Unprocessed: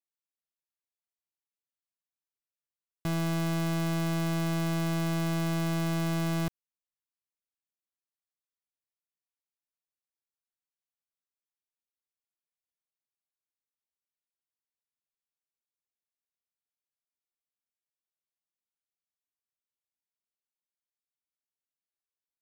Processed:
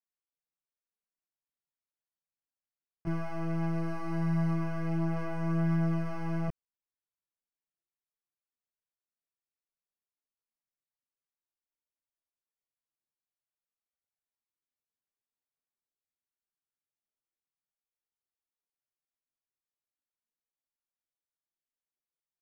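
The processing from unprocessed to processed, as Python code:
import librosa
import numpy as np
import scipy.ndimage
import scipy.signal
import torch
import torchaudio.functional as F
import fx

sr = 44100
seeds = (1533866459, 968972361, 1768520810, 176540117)

y = np.convolve(x, np.full(12, 1.0 / 12))[:len(x)]
y = fx.quant_dither(y, sr, seeds[0], bits=10, dither='none', at=(3.72, 4.53))
y = fx.chorus_voices(y, sr, voices=4, hz=0.24, base_ms=19, depth_ms=4.7, mix_pct=70)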